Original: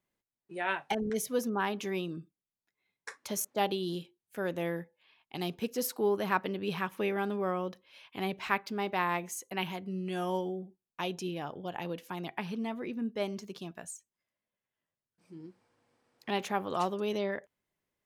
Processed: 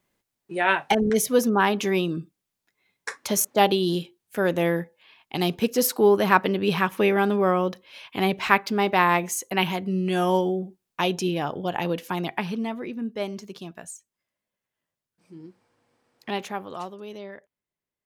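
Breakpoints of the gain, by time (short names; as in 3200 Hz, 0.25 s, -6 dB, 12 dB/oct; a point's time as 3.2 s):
12.16 s +11 dB
12.92 s +4 dB
16.29 s +4 dB
16.96 s -6 dB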